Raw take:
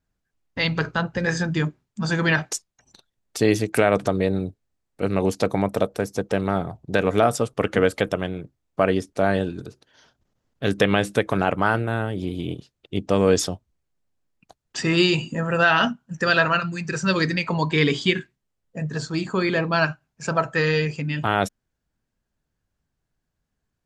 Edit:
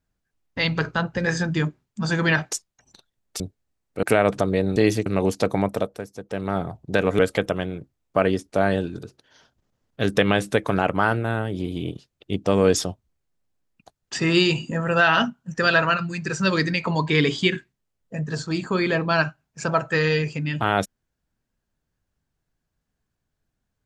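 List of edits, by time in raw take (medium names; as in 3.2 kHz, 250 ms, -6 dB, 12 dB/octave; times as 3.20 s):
3.40–3.70 s: swap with 4.43–5.06 s
5.65–6.65 s: dip -11 dB, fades 0.42 s
7.19–7.82 s: delete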